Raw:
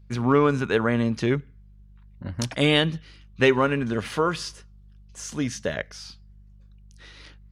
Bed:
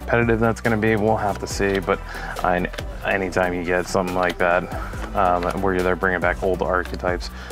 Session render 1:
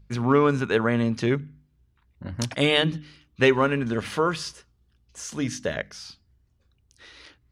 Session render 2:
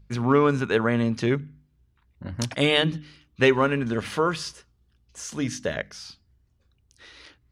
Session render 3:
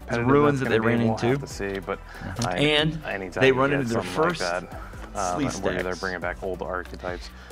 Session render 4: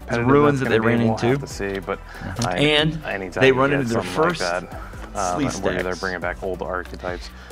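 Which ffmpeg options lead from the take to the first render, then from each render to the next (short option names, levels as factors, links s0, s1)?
-af "bandreject=f=50:t=h:w=4,bandreject=f=100:t=h:w=4,bandreject=f=150:t=h:w=4,bandreject=f=200:t=h:w=4,bandreject=f=250:t=h:w=4,bandreject=f=300:t=h:w=4"
-af anull
-filter_complex "[1:a]volume=0.355[s0];[0:a][s0]amix=inputs=2:normalize=0"
-af "volume=1.5"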